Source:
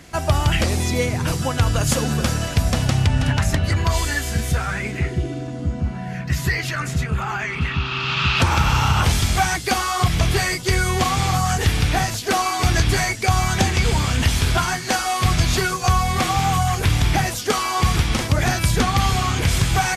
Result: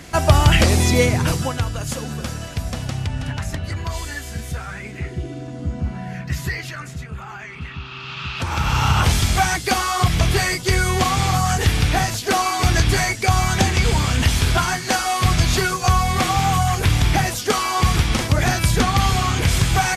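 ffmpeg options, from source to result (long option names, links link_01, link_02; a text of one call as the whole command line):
ffmpeg -i in.wav -af "volume=22dB,afade=type=out:start_time=1.06:duration=0.64:silence=0.251189,afade=type=in:start_time=4.87:duration=1.1:silence=0.473151,afade=type=out:start_time=5.97:duration=0.99:silence=0.354813,afade=type=in:start_time=8.39:duration=0.51:silence=0.298538" out.wav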